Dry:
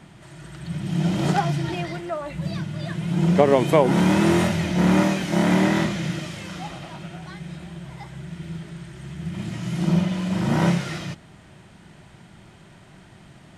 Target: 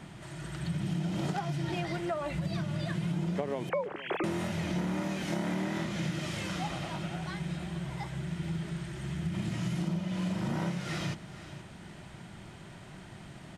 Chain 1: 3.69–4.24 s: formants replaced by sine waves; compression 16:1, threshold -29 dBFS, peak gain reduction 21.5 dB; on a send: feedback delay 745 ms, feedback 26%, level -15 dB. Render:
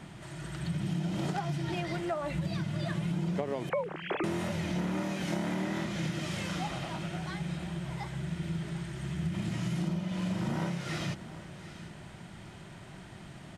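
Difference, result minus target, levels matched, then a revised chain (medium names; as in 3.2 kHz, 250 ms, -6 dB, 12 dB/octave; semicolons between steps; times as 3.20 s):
echo 274 ms late
3.69–4.24 s: formants replaced by sine waves; compression 16:1, threshold -29 dBFS, peak gain reduction 21.5 dB; on a send: feedback delay 471 ms, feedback 26%, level -15 dB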